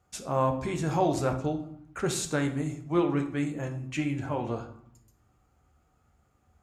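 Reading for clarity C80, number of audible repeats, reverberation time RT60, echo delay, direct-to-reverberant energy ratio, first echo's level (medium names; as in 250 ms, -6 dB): 14.0 dB, no echo, 0.70 s, no echo, 5.0 dB, no echo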